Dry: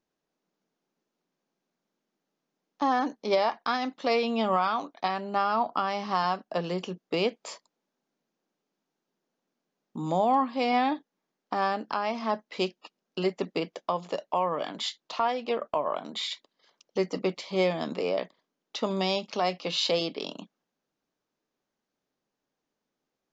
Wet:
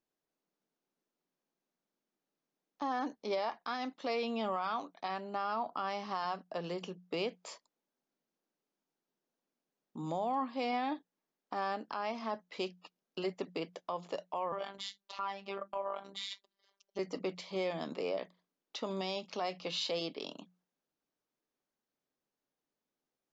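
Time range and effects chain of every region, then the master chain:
14.52–16.99 robotiser 197 Hz + dynamic EQ 1400 Hz, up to +4 dB, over -44 dBFS, Q 1.2 + notches 50/100/150/200/250/300/350 Hz
whole clip: bell 200 Hz -2 dB 0.39 oct; notches 60/120/180 Hz; limiter -19 dBFS; gain -7 dB

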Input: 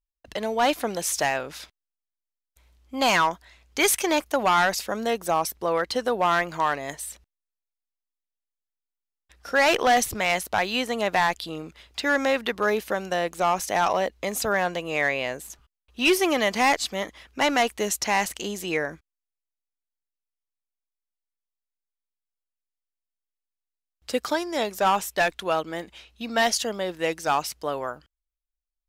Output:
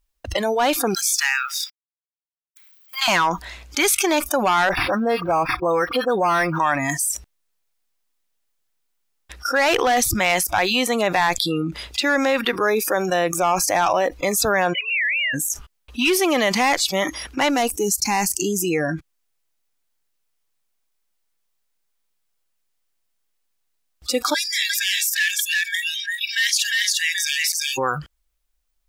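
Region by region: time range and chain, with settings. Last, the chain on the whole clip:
0.94–3.08 G.711 law mismatch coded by A + HPF 1300 Hz 24 dB/oct + bell 10000 Hz -3 dB 0.82 oct
4.69–6.6 dispersion highs, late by 44 ms, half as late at 2200 Hz + decimation joined by straight lines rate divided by 6×
14.73–15.34 sine-wave speech + HPF 1300 Hz + compressor, threshold -28 dBFS
17.49–18.89 bell 1800 Hz -8.5 dB 2.4 oct + mismatched tape noise reduction decoder only
24.34–27.78 brick-wall FIR high-pass 1600 Hz + notch 2500 Hz, Q 14 + echo 0.351 s -4 dB
whole clip: spectral noise reduction 24 dB; fast leveller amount 70%

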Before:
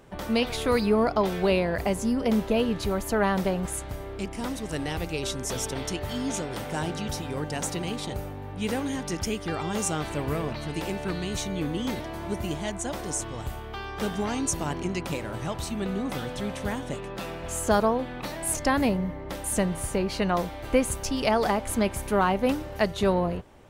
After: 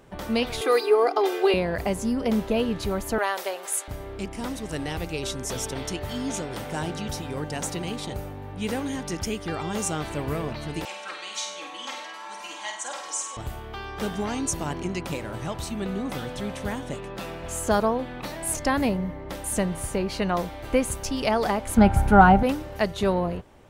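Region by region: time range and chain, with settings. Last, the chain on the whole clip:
0.61–1.54 steep high-pass 290 Hz + comb 2.5 ms, depth 96%
3.18–3.88 HPF 400 Hz 24 dB/oct + tilt +2 dB/oct
10.85–13.37 Chebyshev band-pass 960–7000 Hz + comb 3.7 ms, depth 84% + flutter echo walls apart 8.5 m, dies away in 0.54 s
21.77–22.43 tone controls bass +15 dB, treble -4 dB + small resonant body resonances 800/1400 Hz, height 17 dB, ringing for 35 ms
whole clip: dry

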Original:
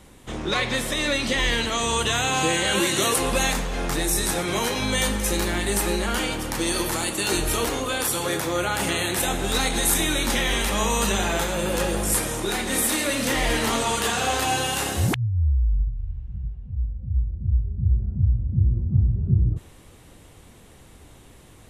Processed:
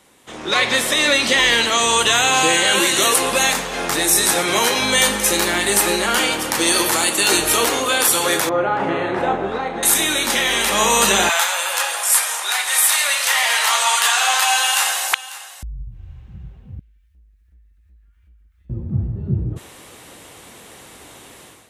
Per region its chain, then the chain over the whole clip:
8.49–9.83 LPF 1100 Hz + bell 63 Hz -4.5 dB 0.4 oct + doubler 36 ms -8 dB
11.29–15.63 HPF 780 Hz 24 dB/oct + echo 0.545 s -17 dB
16.79–18.7 inverse Chebyshev band-stop 110–590 Hz, stop band 60 dB + compressor 2:1, threshold -46 dBFS
whole clip: HPF 540 Hz 6 dB/oct; AGC gain up to 12.5 dB

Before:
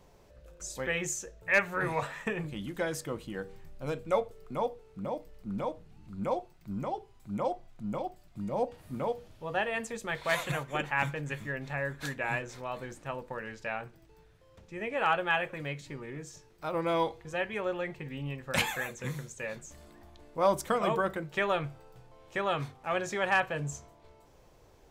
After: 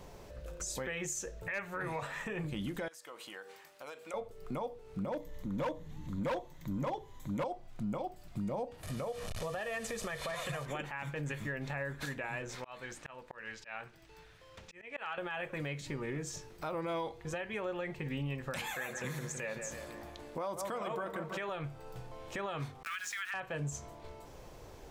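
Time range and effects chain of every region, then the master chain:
2.88–4.14 HPF 750 Hz + compressor 5:1, threshold -52 dBFS
5.12–7.44 ripple EQ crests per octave 1.1, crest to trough 9 dB + overloaded stage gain 29.5 dB
8.83–10.66 delta modulation 64 kbps, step -42.5 dBFS + comb 1.7 ms, depth 49% + compressor 2.5:1, threshold -41 dBFS
12.55–15.18 LPF 2600 Hz 6 dB/oct + tilt shelf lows -8.5 dB, about 1100 Hz + auto swell 0.522 s
18.74–21.49 low shelf 120 Hz -11 dB + dark delay 0.161 s, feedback 49%, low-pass 2200 Hz, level -11.5 dB
22.83–23.34 steep high-pass 1300 Hz 48 dB/oct + sample gate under -47 dBFS
whole clip: compressor 3:1, threshold -44 dBFS; limiter -37 dBFS; gain +8 dB

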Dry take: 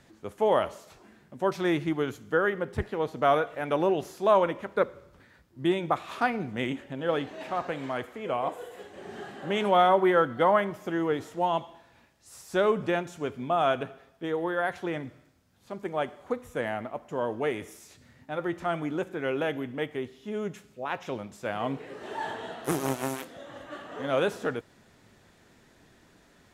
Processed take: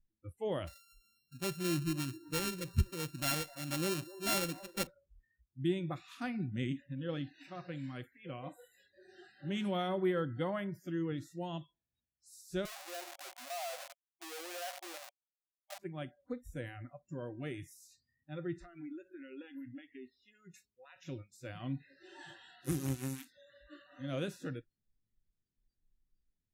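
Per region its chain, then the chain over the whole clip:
0.67–4.87 sample sorter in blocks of 32 samples + band-limited delay 0.257 s, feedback 41%, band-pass 570 Hz, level -13 dB
12.65–15.79 Schmitt trigger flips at -40 dBFS + resonant high-pass 730 Hz, resonance Q 3
18.58–20.96 bell 150 Hz -12.5 dB 0.51 oct + compressor 20:1, threshold -33 dBFS
whole clip: spectral noise reduction 30 dB; passive tone stack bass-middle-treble 10-0-1; gain +13.5 dB

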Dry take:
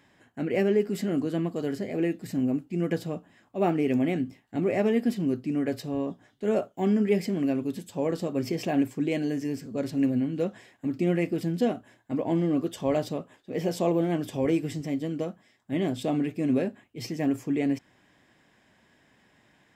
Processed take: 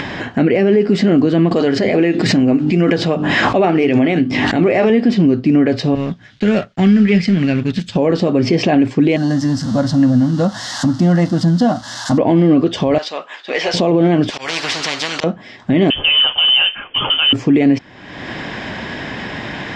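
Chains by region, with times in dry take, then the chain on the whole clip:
1.51–4.9 low shelf 400 Hz -6.5 dB + notches 50/100/150/200/250/300/350/400 Hz + backwards sustainer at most 36 dB/s
5.95–7.96 G.711 law mismatch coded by A + band shelf 540 Hz -11.5 dB 2.4 oct
9.16–12.18 switching spikes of -32 dBFS + fixed phaser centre 1000 Hz, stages 4
12.98–13.74 median filter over 3 samples + HPF 1100 Hz + hard clip -35 dBFS
14.3–15.24 HPF 930 Hz + auto swell 0.2 s + spectral compressor 4:1
15.9–17.33 G.711 law mismatch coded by mu + HPF 410 Hz 6 dB/oct + inverted band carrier 3300 Hz
whole clip: LPF 5200 Hz 24 dB/oct; upward compressor, threshold -29 dBFS; maximiser +22.5 dB; gain -3.5 dB

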